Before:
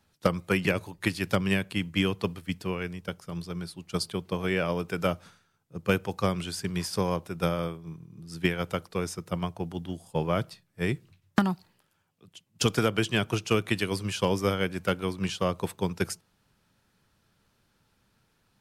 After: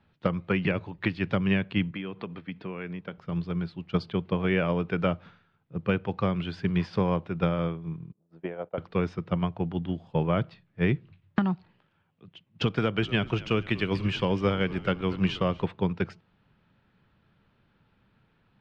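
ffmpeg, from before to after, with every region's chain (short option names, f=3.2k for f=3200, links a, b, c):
-filter_complex "[0:a]asettb=1/sr,asplit=3[a][b][c];[a]atrim=end=1.914[d];[b]atrim=start=1.91:end=3.18,asetpts=PTS-STARTPTS,afade=t=in:d=0.004:c=qsin,afade=t=out:st=1.266:d=0.004:c=qsin,bandreject=f=2.9k:w=14,acompressor=threshold=-33dB:ratio=8:attack=3.2:release=140:knee=1:detection=peak,highpass=170,lowpass=4.5k[e];[c]atrim=start=3.176[f];[d][e]acrossfade=d=0.004:c1=hsin:c2=qsin[g];[g][f]acrossfade=d=0.004:c1=qsin:c2=hsin,asettb=1/sr,asplit=3[h][i][j];[h]atrim=end=8.124[k];[i]atrim=start=8.12:end=8.78,asetpts=PTS-STARTPTS,afade=t=in:d=0.004:c=qsin,afade=t=out:st=0.656:d=0.004:c=qsin,agate=range=-17dB:threshold=-42dB:ratio=16:release=100:detection=peak,bandpass=f=620:t=q:w=2.4[l];[j]atrim=start=8.776[m];[k][l]acrossfade=d=0.004:c1=hsin:c2=qsin[n];[n][m]acrossfade=d=0.004:c1=qsin:c2=hsin,asettb=1/sr,asplit=3[o][p][q];[o]atrim=end=12.774[r];[p]atrim=start=12.77:end=15.64,asetpts=PTS-STARTPTS,afade=t=in:d=0.004:c=qsin,afade=t=out:st=2.866:d=0.004:c=qsin,equalizer=f=8.8k:t=o:w=1.2:g=12,asplit=6[s][t][u][v][w][x];[t]adelay=240,afreqshift=-61,volume=-19dB[y];[u]adelay=480,afreqshift=-122,volume=-23.9dB[z];[v]adelay=720,afreqshift=-183,volume=-28.8dB[aa];[w]adelay=960,afreqshift=-244,volume=-33.6dB[ab];[x]adelay=1200,afreqshift=-305,volume=-38.5dB[ac];[s][y][z][aa][ab][ac]amix=inputs=6:normalize=0,atrim=end_sample=126567[ad];[q]atrim=start=15.636[ae];[r][ad]acrossfade=d=0.004:c1=hsin:c2=qsin[af];[af][ae]acrossfade=d=0.004:c1=qsin:c2=hsin,lowpass=f=3.3k:w=0.5412,lowpass=f=3.3k:w=1.3066,equalizer=f=160:t=o:w=1.5:g=4,alimiter=limit=-16dB:level=0:latency=1:release=301,volume=2dB"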